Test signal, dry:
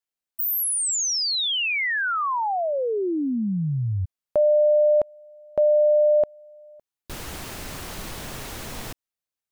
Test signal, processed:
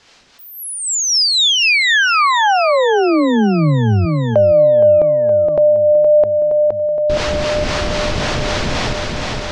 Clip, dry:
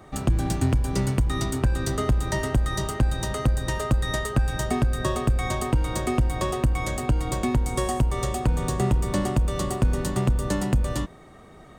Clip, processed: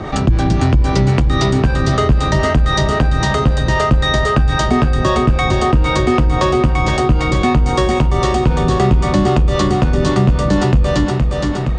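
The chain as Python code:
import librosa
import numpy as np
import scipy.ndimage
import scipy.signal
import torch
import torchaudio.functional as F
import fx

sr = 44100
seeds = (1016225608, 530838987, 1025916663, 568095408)

p1 = scipy.signal.sosfilt(scipy.signal.butter(4, 5700.0, 'lowpass', fs=sr, output='sos'), x)
p2 = fx.harmonic_tremolo(p1, sr, hz=3.8, depth_pct=50, crossover_hz=420.0)
p3 = p2 + fx.echo_feedback(p2, sr, ms=468, feedback_pct=56, wet_db=-7.0, dry=0)
p4 = fx.env_flatten(p3, sr, amount_pct=50)
y = p4 * 10.0 ** (8.5 / 20.0)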